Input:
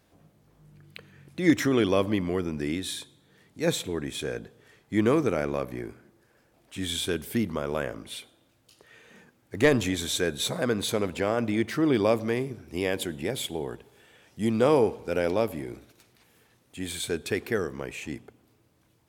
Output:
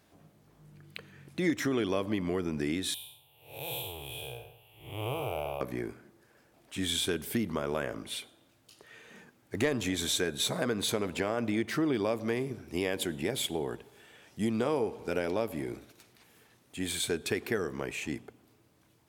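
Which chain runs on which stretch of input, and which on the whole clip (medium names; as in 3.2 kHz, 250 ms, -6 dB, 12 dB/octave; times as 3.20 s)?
2.94–5.61 s: spectral blur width 225 ms + FFT filter 130 Hz 0 dB, 200 Hz -28 dB, 820 Hz +6 dB, 1.8 kHz -25 dB, 2.8 kHz +11 dB, 4.2 kHz -11 dB, 6.5 kHz -18 dB, 13 kHz +15 dB
whole clip: compression 4:1, threshold -27 dBFS; bass shelf 91 Hz -6.5 dB; band-stop 510 Hz, Q 17; trim +1 dB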